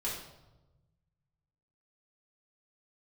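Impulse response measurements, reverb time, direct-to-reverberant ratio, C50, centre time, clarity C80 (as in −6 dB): 1.1 s, −7.0 dB, 3.0 dB, 47 ms, 6.0 dB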